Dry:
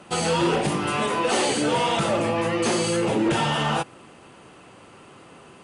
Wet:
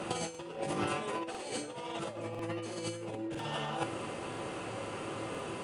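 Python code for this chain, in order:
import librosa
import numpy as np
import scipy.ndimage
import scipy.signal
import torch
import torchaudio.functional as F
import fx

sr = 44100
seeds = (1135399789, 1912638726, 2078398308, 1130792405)

y = fx.peak_eq(x, sr, hz=500.0, db=5.0, octaves=0.83)
y = fx.over_compress(y, sr, threshold_db=-29.0, ratio=-0.5)
y = fx.comb_fb(y, sr, f0_hz=110.0, decay_s=0.4, harmonics='odd', damping=0.0, mix_pct=70)
y = fx.buffer_crackle(y, sr, first_s=0.3, period_s=1.0, block=2048, kind='repeat')
y = y * librosa.db_to_amplitude(3.5)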